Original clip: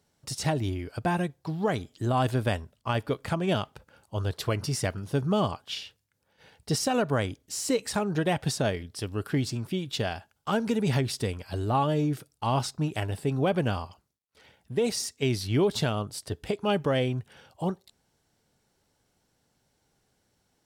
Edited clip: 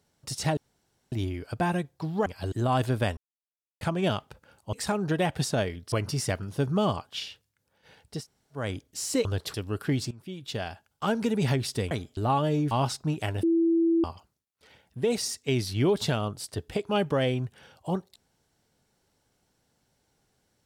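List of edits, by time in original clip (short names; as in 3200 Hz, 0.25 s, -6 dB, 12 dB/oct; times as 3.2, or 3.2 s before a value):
0.57 insert room tone 0.55 s
1.71–1.97 swap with 11.36–11.62
2.62–3.26 mute
4.18–4.47 swap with 7.8–8.99
6.7–7.17 room tone, crossfade 0.24 s
9.56–10.65 fade in equal-power, from -18.5 dB
12.16–12.45 cut
13.17–13.78 bleep 332 Hz -19.5 dBFS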